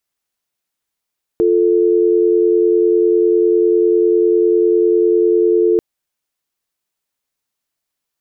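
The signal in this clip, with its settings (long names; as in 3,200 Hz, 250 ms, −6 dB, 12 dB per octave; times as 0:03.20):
call progress tone dial tone, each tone −12.5 dBFS 4.39 s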